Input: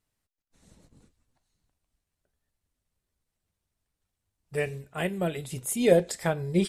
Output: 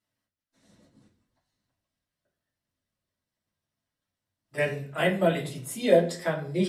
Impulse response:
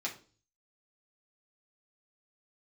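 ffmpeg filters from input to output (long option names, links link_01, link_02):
-filter_complex "[0:a]asettb=1/sr,asplit=3[link_01][link_02][link_03];[link_01]atrim=end=4.584[link_04];[link_02]atrim=start=4.58:end=5.49,asetpts=PTS-STARTPTS,afade=type=in:duration=0.004:curve=qsin,afade=type=out:start_time=0.906:duration=0.004:curve=qsin,acontrast=37[link_05];[link_03]atrim=start=5.486[link_06];[link_04][link_05]acrossfade=duration=0.004:curve1=hsin:curve2=qsin[link_07];[link_07][link_06]acrossfade=duration=0.004:curve1=qsin:curve2=hsin[link_08];[1:a]atrim=start_sample=2205,asetrate=35721,aresample=44100[link_09];[link_08][link_09]afir=irnorm=-1:irlink=0,volume=-4dB"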